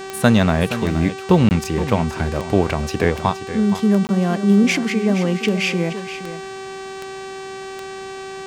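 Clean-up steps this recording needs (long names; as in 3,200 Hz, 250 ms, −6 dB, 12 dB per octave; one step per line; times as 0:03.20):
click removal
hum removal 385.2 Hz, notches 23
repair the gap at 0:01.49/0:04.07, 19 ms
echo removal 471 ms −12 dB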